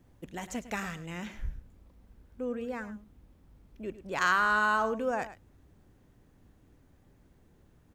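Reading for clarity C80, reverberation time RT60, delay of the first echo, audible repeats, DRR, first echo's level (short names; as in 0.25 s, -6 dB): none, none, 0.105 s, 1, none, -14.0 dB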